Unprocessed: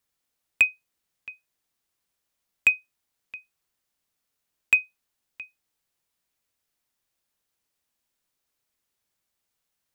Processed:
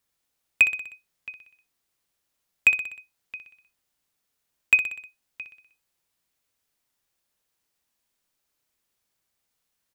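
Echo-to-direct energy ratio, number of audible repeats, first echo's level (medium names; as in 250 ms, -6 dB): -8.0 dB, 5, -9.5 dB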